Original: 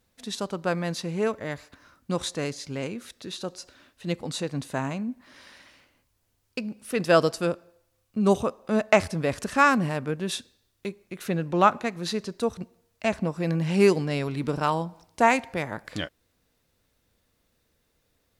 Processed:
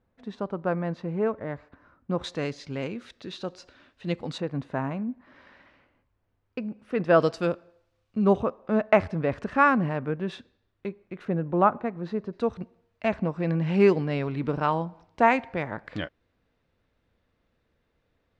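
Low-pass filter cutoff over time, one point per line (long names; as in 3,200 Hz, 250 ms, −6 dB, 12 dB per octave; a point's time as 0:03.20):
1,400 Hz
from 0:02.24 3,600 Hz
from 0:04.38 1,800 Hz
from 0:07.20 3,800 Hz
from 0:08.24 2,000 Hz
from 0:11.25 1,200 Hz
from 0:12.33 2,600 Hz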